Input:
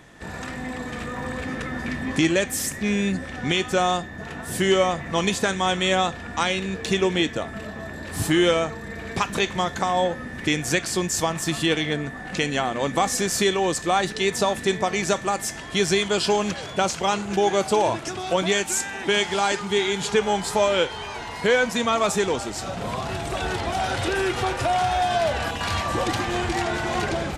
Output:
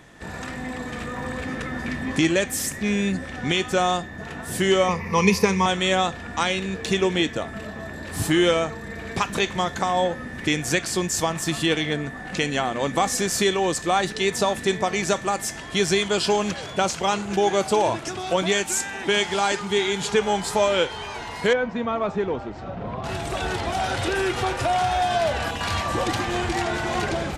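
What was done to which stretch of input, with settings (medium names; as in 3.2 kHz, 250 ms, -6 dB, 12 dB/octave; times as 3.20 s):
4.88–5.66 s: rippled EQ curve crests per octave 0.84, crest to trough 15 dB
21.53–23.04 s: tape spacing loss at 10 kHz 41 dB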